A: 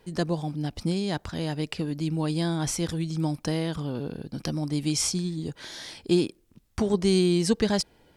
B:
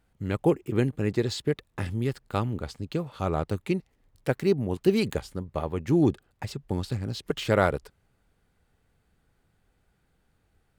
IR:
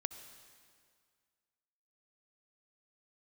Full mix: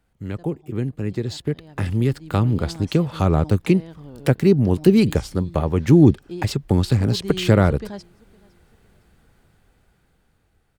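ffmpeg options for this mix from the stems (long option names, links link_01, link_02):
-filter_complex "[0:a]lowpass=frequency=1900:poles=1,adelay=200,volume=-20dB,asplit=2[link_01][link_02];[link_02]volume=-24dB[link_03];[1:a]acrossover=split=290[link_04][link_05];[link_05]acompressor=threshold=-37dB:ratio=2.5[link_06];[link_04][link_06]amix=inputs=2:normalize=0,volume=1dB,asplit=2[link_07][link_08];[link_08]apad=whole_len=368870[link_09];[link_01][link_09]sidechaincompress=threshold=-25dB:ratio=8:attack=39:release=716[link_10];[link_03]aecho=0:1:510|1020|1530|2040|2550|3060:1|0.4|0.16|0.064|0.0256|0.0102[link_11];[link_10][link_07][link_11]amix=inputs=3:normalize=0,dynaudnorm=framelen=230:gausssize=17:maxgain=14.5dB"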